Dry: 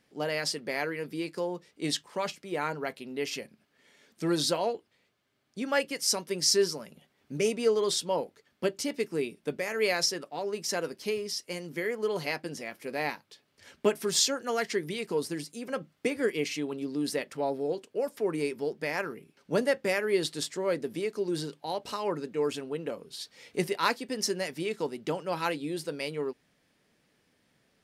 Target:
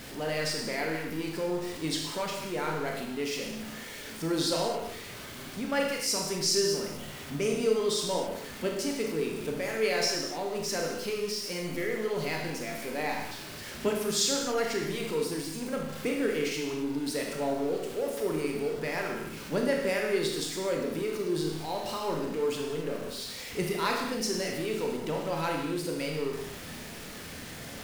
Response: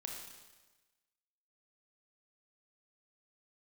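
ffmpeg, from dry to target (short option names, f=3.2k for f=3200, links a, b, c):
-filter_complex "[0:a]aeval=exprs='val(0)+0.5*0.0178*sgn(val(0))':c=same,lowshelf=f=110:g=7.5[a];[1:a]atrim=start_sample=2205,afade=t=out:st=0.33:d=0.01,atrim=end_sample=14994[b];[a][b]afir=irnorm=-1:irlink=0"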